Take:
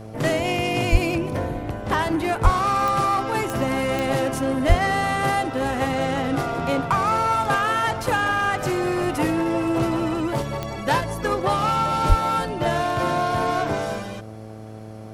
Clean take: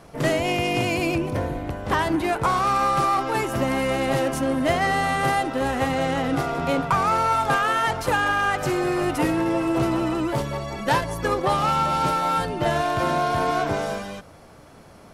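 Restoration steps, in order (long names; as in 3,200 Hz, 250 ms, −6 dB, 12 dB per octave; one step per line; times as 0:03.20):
click removal
hum removal 109 Hz, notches 7
high-pass at the plosives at 0:00.91/0:02.43/0:04.68/0:12.08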